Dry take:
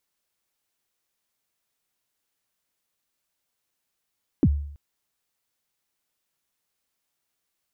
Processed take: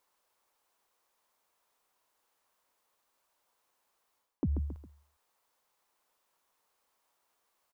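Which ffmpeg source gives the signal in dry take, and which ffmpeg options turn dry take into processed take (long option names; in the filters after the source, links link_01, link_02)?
-f lavfi -i "aevalsrc='0.251*pow(10,-3*t/0.66)*sin(2*PI*(350*0.051/log(72/350)*(exp(log(72/350)*min(t,0.051)/0.051)-1)+72*max(t-0.051,0)))':duration=0.33:sample_rate=44100"
-af "equalizer=frequency=125:width_type=o:width=1:gain=-6,equalizer=frequency=500:width_type=o:width=1:gain=6,equalizer=frequency=1000:width_type=o:width=1:gain=12,aecho=1:1:136|272|408:0.119|0.0416|0.0146,areverse,acompressor=threshold=-29dB:ratio=10,areverse"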